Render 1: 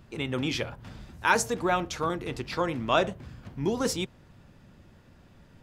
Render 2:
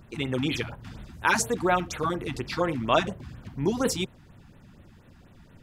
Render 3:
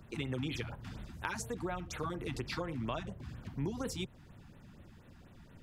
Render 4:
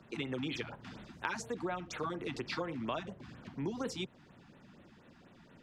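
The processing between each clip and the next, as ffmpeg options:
-af "afftfilt=real='re*(1-between(b*sr/1024,430*pow(6300/430,0.5+0.5*sin(2*PI*4.2*pts/sr))/1.41,430*pow(6300/430,0.5+0.5*sin(2*PI*4.2*pts/sr))*1.41))':imag='im*(1-between(b*sr/1024,430*pow(6300/430,0.5+0.5*sin(2*PI*4.2*pts/sr))/1.41,430*pow(6300/430,0.5+0.5*sin(2*PI*4.2*pts/sr))*1.41))':win_size=1024:overlap=0.75,volume=2.5dB"
-filter_complex "[0:a]acrossover=split=130[a][b];[b]acompressor=threshold=-32dB:ratio=10[c];[a][c]amix=inputs=2:normalize=0,volume=-3.5dB"
-filter_complex "[0:a]acrossover=split=160 7000:gain=0.158 1 0.158[a][b][c];[a][b][c]amix=inputs=3:normalize=0,volume=1.5dB"

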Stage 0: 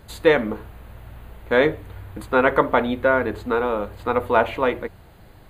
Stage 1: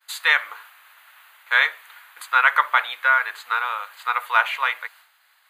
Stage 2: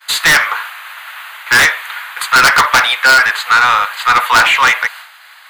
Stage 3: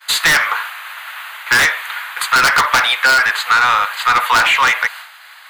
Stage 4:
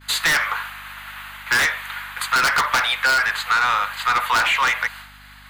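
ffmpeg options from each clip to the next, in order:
-af "highpass=f=1.2k:w=0.5412,highpass=f=1.2k:w=1.3066,agate=range=-33dB:threshold=-52dB:ratio=3:detection=peak,volume=7dB"
-filter_complex "[0:a]acrossover=split=1100|6300[a][b][c];[b]aeval=exprs='(mod(3.98*val(0)+1,2)-1)/3.98':c=same[d];[a][d][c]amix=inputs=3:normalize=0,asplit=2[e][f];[f]highpass=f=720:p=1,volume=23dB,asoftclip=type=tanh:threshold=-6dB[g];[e][g]amix=inputs=2:normalize=0,lowpass=f=4.8k:p=1,volume=-6dB,volume=5dB"
-af "acompressor=threshold=-10dB:ratio=4"
-af "aeval=exprs='val(0)+0.00794*(sin(2*PI*50*n/s)+sin(2*PI*2*50*n/s)/2+sin(2*PI*3*50*n/s)/3+sin(2*PI*4*50*n/s)/4+sin(2*PI*5*50*n/s)/5)':c=same,volume=-6dB"

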